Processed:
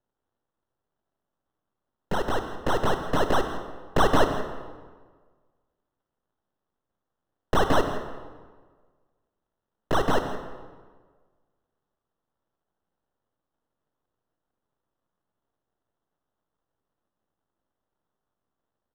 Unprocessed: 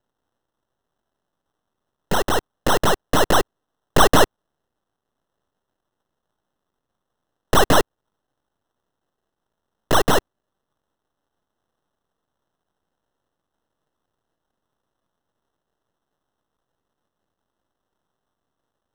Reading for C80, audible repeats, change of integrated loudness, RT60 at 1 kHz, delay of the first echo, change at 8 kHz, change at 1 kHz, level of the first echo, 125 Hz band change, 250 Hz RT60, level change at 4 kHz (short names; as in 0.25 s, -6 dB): 8.5 dB, 1, -7.5 dB, 1.5 s, 0.164 s, -15.5 dB, -6.0 dB, -15.5 dB, -5.0 dB, 1.6 s, -10.5 dB